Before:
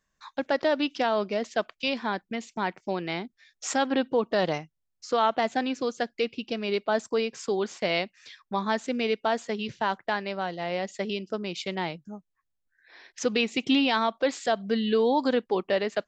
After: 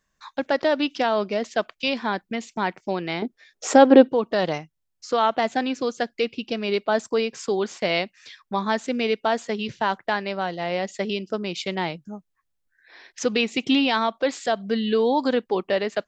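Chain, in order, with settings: 3.22–4.09 bell 430 Hz +15 dB 2 oct; in parallel at -1 dB: vocal rider within 3 dB 2 s; on the sum: gain -3 dB

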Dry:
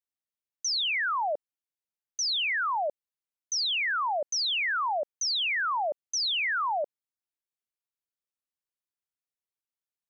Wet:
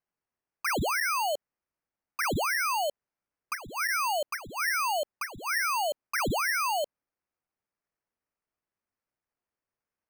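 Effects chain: 3.53–5.91 band shelf 3900 Hz -15.5 dB 1 oct; sample-and-hold 12×

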